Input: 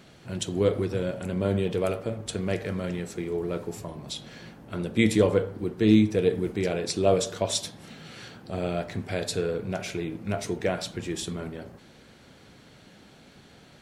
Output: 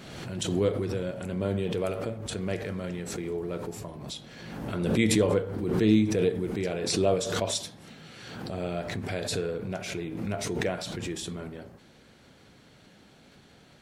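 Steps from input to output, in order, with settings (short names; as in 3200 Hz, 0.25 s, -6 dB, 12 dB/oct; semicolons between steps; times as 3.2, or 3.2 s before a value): backwards sustainer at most 38 dB/s; gain -3.5 dB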